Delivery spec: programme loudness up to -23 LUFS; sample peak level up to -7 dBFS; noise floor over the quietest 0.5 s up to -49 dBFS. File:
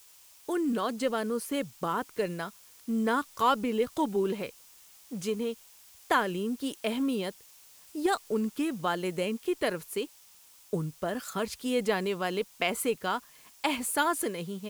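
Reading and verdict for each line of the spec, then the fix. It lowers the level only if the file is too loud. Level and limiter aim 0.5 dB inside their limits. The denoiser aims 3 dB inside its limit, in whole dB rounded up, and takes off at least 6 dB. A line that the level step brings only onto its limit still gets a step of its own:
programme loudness -31.0 LUFS: pass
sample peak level -12.0 dBFS: pass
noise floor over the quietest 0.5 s -57 dBFS: pass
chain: none needed

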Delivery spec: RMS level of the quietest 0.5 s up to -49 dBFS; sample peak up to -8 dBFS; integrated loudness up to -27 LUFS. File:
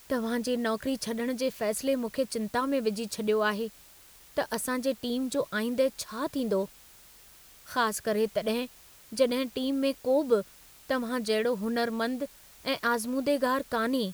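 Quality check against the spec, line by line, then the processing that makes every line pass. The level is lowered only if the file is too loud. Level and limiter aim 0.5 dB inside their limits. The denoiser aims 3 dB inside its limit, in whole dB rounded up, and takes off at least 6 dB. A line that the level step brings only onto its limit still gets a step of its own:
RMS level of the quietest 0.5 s -54 dBFS: pass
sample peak -12.5 dBFS: pass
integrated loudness -29.5 LUFS: pass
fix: none needed

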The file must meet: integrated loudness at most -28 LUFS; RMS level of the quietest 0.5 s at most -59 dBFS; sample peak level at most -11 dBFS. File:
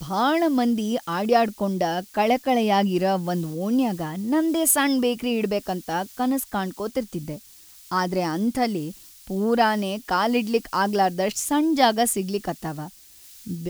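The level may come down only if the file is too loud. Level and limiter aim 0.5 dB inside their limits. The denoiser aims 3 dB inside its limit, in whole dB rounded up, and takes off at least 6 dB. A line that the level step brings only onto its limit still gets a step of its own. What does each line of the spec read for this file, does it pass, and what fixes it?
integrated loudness -23.0 LUFS: fail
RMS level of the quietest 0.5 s -48 dBFS: fail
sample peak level -6.0 dBFS: fail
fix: noise reduction 9 dB, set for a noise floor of -48 dBFS; trim -5.5 dB

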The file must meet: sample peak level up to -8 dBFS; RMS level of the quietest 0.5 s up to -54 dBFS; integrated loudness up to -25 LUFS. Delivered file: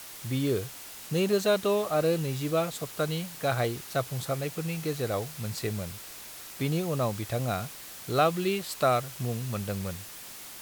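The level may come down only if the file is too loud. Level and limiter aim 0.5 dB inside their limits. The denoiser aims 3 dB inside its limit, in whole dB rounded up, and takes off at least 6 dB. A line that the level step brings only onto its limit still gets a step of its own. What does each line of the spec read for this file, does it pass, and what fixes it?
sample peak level -11.0 dBFS: pass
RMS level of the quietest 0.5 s -44 dBFS: fail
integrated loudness -29.5 LUFS: pass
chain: noise reduction 13 dB, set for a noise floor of -44 dBFS

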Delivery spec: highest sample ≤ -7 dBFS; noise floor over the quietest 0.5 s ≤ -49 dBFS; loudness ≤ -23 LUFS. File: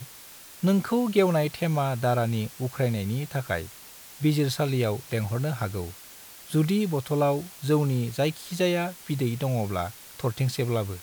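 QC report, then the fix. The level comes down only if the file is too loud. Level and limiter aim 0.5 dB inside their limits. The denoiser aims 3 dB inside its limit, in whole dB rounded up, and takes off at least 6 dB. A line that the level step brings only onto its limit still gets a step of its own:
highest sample -9.5 dBFS: pass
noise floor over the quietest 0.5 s -47 dBFS: fail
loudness -26.5 LUFS: pass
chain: noise reduction 6 dB, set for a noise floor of -47 dBFS

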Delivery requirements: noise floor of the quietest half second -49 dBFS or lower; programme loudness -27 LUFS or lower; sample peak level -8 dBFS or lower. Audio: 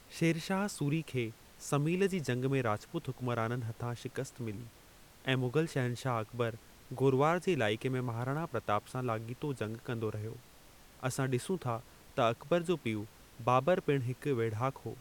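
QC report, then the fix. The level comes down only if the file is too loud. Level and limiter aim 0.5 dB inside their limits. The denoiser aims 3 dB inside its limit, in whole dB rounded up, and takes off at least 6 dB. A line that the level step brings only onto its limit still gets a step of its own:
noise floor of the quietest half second -58 dBFS: pass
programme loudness -34.5 LUFS: pass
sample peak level -15.0 dBFS: pass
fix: none needed

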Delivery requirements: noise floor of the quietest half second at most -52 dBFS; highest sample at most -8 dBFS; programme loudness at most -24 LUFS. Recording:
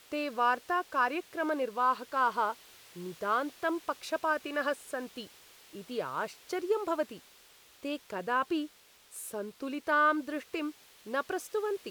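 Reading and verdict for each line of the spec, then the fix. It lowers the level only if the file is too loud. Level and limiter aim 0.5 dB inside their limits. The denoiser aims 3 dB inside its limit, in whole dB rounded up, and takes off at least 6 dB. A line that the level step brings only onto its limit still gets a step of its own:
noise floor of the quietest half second -59 dBFS: pass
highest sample -16.5 dBFS: pass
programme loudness -32.5 LUFS: pass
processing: none needed

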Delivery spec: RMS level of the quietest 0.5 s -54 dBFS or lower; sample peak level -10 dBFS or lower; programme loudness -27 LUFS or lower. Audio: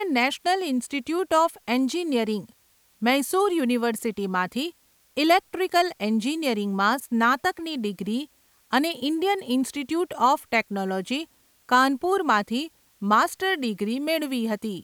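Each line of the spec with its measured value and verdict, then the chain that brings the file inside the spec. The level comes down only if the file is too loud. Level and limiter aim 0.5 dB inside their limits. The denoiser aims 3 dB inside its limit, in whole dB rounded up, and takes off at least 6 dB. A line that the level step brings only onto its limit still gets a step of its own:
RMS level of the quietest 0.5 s -62 dBFS: pass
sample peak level -7.5 dBFS: fail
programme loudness -24.5 LUFS: fail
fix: trim -3 dB

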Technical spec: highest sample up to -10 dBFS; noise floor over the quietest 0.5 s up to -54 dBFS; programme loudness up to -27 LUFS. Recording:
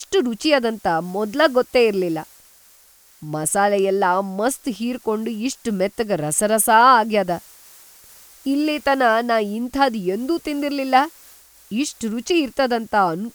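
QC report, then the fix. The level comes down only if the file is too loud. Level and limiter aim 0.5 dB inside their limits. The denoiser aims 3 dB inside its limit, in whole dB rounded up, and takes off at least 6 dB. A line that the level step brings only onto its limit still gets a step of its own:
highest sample -2.5 dBFS: fail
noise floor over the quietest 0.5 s -52 dBFS: fail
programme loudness -19.5 LUFS: fail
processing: trim -8 dB

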